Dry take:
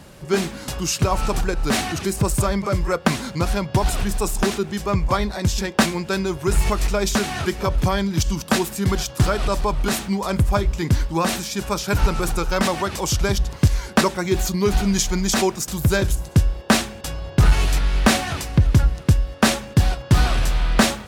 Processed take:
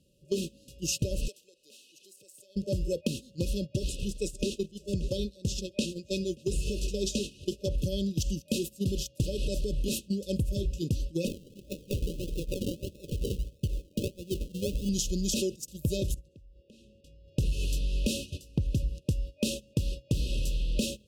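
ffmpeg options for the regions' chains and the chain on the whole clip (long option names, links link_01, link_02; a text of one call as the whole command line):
ffmpeg -i in.wav -filter_complex "[0:a]asettb=1/sr,asplit=3[link_01][link_02][link_03];[link_01]atrim=end=1.284[link_04];[link_02]atrim=start=1.28:end=2.56,asetpts=PTS-STARTPTS,afade=type=in:duration=0.004:curve=qsin,afade=type=out:start_time=1.276:duration=0.004:curve=qsin,highpass=700,acompressor=threshold=-28dB:ratio=2.5:attack=3.2:release=140:knee=1:detection=peak[link_05];[link_03]atrim=start=2.556[link_06];[link_04][link_05]acrossfade=duration=0.004:curve1=hsin:curve2=qsin[link_07];[link_07][link_06]acrossfade=duration=0.004:curve1=qsin:curve2=hsin,asettb=1/sr,asplit=3[link_08][link_09][link_10];[link_08]atrim=end=3.724[link_11];[link_09]atrim=start=3.72:end=7.68,asetpts=PTS-STARTPTS,afade=type=in:duration=0.004:curve=qsin,afade=type=out:start_time=3.956:duration=0.004:curve=qsin,acrossover=split=9500[link_12][link_13];[link_13]acompressor=threshold=-50dB:ratio=4:attack=1:release=60[link_14];[link_12][link_14]amix=inputs=2:normalize=0,lowshelf=frequency=170:gain=-4,aecho=1:1:581:0.168,atrim=end_sample=174636[link_15];[link_10]atrim=start=7.676[link_16];[link_11][link_15]acrossfade=duration=0.004:curve1=hsin:curve2=qsin[link_17];[link_17][link_16]acrossfade=duration=0.004:curve1=qsin:curve2=hsin,asettb=1/sr,asplit=3[link_18][link_19][link_20];[link_18]atrim=end=11.274[link_21];[link_19]atrim=start=11.27:end=14.89,asetpts=PTS-STARTPTS,afade=type=in:duration=0.004:curve=qsin,afade=type=out:start_time=3.616:duration=0.004:curve=qsin,acompressor=threshold=-22dB:ratio=2:attack=3.2:release=140:knee=1:detection=peak,acrusher=samples=40:mix=1:aa=0.000001:lfo=1:lforange=24:lforate=1.6[link_22];[link_20]atrim=start=14.886[link_23];[link_21][link_22]acrossfade=duration=0.004:curve1=hsin:curve2=qsin[link_24];[link_24][link_23]acrossfade=duration=0.004:curve1=qsin:curve2=hsin,asettb=1/sr,asplit=3[link_25][link_26][link_27];[link_25]atrim=end=16.144[link_28];[link_26]atrim=start=16.14:end=17.28,asetpts=PTS-STARTPTS,afade=type=in:duration=0.004:curve=qsin,afade=type=out:start_time=1.136:duration=0.004:curve=qsin,lowpass=frequency=2300:poles=1,acompressor=threshold=-27dB:ratio=12:attack=3.2:release=140:knee=1:detection=peak[link_29];[link_27]atrim=start=17.276[link_30];[link_28][link_29]acrossfade=duration=0.004:curve1=hsin:curve2=qsin[link_31];[link_31][link_30]acrossfade=duration=0.004:curve1=qsin:curve2=hsin,agate=range=-18dB:threshold=-23dB:ratio=16:detection=peak,afftfilt=real='re*(1-between(b*sr/4096,600,2500))':imag='im*(1-between(b*sr/4096,600,2500))':win_size=4096:overlap=0.75,acompressor=threshold=-22dB:ratio=4,volume=-4.5dB" out.wav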